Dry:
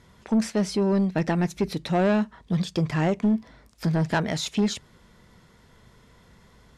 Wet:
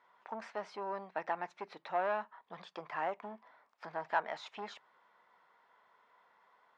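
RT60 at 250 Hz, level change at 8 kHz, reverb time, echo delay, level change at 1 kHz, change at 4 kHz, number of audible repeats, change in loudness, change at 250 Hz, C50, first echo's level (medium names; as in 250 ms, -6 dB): no reverb, under -25 dB, no reverb, no echo, -4.5 dB, -18.5 dB, no echo, -14.5 dB, -30.0 dB, no reverb, no echo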